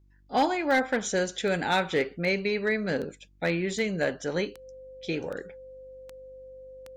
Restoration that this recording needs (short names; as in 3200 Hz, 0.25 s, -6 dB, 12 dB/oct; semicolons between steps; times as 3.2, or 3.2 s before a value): clip repair -17 dBFS; de-click; de-hum 48.9 Hz, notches 7; notch 520 Hz, Q 30